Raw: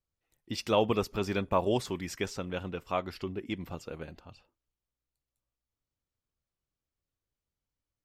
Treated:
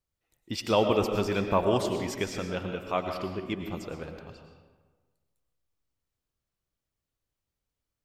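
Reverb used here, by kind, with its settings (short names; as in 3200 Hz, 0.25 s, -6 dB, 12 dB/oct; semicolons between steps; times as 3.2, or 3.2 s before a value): digital reverb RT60 1.4 s, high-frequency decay 0.6×, pre-delay 70 ms, DRR 5 dB; gain +2 dB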